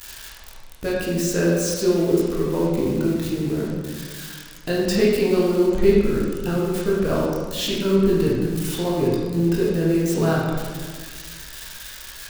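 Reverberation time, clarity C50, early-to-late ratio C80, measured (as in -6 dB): 1.6 s, -0.5 dB, 2.0 dB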